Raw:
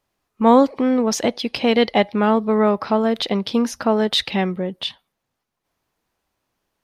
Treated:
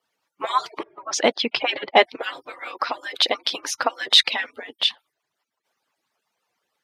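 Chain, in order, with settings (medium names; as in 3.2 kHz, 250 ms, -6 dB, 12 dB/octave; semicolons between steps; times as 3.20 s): harmonic-percussive separation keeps percussive; frequency weighting A; 0.83–2.20 s: level-controlled noise filter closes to 500 Hz, open at -18.5 dBFS; trim +5 dB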